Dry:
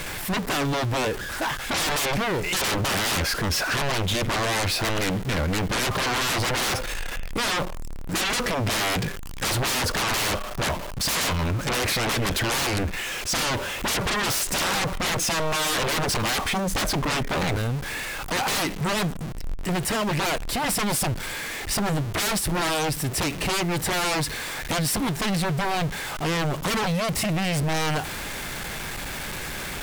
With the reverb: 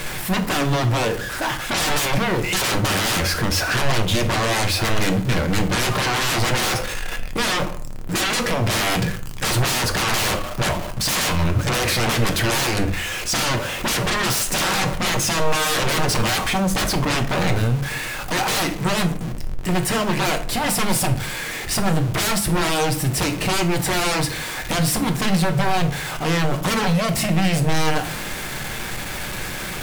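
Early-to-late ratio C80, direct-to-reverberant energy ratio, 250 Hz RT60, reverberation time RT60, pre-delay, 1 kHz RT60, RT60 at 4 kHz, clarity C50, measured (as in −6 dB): 17.0 dB, 6.0 dB, 0.60 s, 0.55 s, 5 ms, 0.45 s, 0.30 s, 13.0 dB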